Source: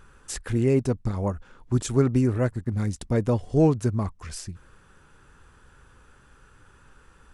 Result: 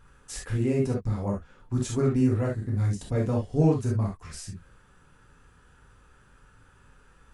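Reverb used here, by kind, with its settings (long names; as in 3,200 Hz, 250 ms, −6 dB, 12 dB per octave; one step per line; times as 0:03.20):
reverb whose tail is shaped and stops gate 90 ms flat, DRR −3 dB
level −7.5 dB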